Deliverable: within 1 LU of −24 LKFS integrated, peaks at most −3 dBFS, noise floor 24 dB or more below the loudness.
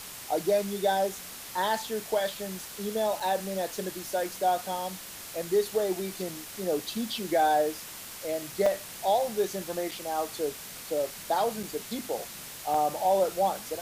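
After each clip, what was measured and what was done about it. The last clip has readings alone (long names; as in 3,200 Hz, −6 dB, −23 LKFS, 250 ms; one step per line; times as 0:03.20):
number of dropouts 5; longest dropout 4.1 ms; background noise floor −43 dBFS; target noise floor −54 dBFS; integrated loudness −30.0 LKFS; sample peak −14.5 dBFS; target loudness −24.0 LKFS
→ repair the gap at 0:03.20/0:08.66/0:09.91/0:11.63/0:12.74, 4.1 ms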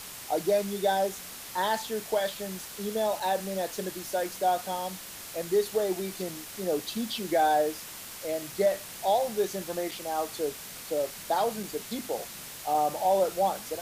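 number of dropouts 0; background noise floor −43 dBFS; target noise floor −54 dBFS
→ broadband denoise 11 dB, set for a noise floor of −43 dBFS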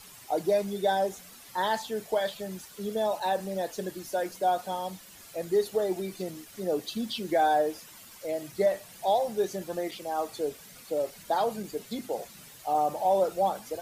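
background noise floor −50 dBFS; target noise floor −54 dBFS
→ broadband denoise 6 dB, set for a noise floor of −50 dBFS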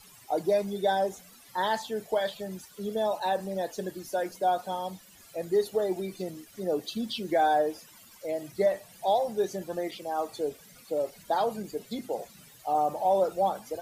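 background noise floor −54 dBFS; integrated loudness −30.0 LKFS; sample peak −15.0 dBFS; target loudness −24.0 LKFS
→ level +6 dB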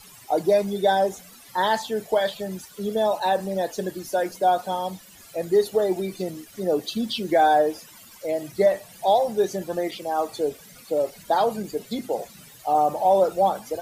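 integrated loudness −24.0 LKFS; sample peak −9.0 dBFS; background noise floor −48 dBFS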